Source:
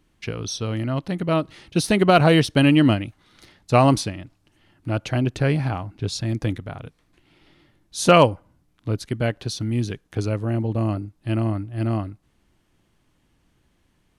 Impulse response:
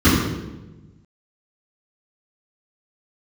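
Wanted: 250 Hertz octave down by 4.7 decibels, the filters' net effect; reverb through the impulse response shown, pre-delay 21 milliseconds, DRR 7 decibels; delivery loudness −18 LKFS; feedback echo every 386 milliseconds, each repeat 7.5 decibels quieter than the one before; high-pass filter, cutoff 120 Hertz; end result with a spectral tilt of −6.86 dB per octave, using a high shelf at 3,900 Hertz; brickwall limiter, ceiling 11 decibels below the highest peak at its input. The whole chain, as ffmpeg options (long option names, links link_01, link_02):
-filter_complex "[0:a]highpass=120,equalizer=frequency=250:width_type=o:gain=-6,highshelf=frequency=3900:gain=-3,alimiter=limit=-13dB:level=0:latency=1,aecho=1:1:386|772|1158|1544|1930:0.422|0.177|0.0744|0.0312|0.0131,asplit=2[link_01][link_02];[1:a]atrim=start_sample=2205,adelay=21[link_03];[link_02][link_03]afir=irnorm=-1:irlink=0,volume=-30.5dB[link_04];[link_01][link_04]amix=inputs=2:normalize=0,volume=4.5dB"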